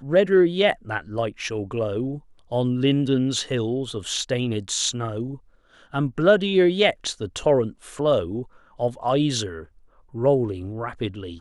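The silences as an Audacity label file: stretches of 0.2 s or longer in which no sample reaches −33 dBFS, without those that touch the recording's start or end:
2.180000	2.520000	silence
5.350000	5.940000	silence
8.430000	8.800000	silence
9.630000	10.140000	silence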